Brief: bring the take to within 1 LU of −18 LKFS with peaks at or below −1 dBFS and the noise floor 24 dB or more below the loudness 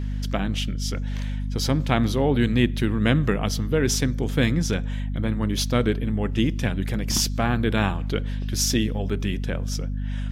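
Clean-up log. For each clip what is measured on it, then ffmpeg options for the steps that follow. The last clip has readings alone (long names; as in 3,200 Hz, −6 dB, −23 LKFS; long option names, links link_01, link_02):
mains hum 50 Hz; hum harmonics up to 250 Hz; level of the hum −24 dBFS; integrated loudness −24.0 LKFS; sample peak −4.5 dBFS; target loudness −18.0 LKFS
→ -af "bandreject=frequency=50:width_type=h:width=4,bandreject=frequency=100:width_type=h:width=4,bandreject=frequency=150:width_type=h:width=4,bandreject=frequency=200:width_type=h:width=4,bandreject=frequency=250:width_type=h:width=4"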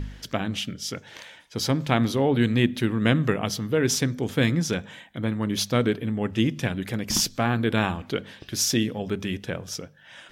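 mains hum none found; integrated loudness −25.0 LKFS; sample peak −5.0 dBFS; target loudness −18.0 LKFS
→ -af "volume=7dB,alimiter=limit=-1dB:level=0:latency=1"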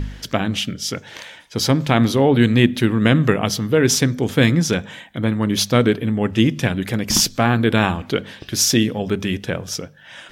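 integrated loudness −18.5 LKFS; sample peak −1.0 dBFS; background noise floor −44 dBFS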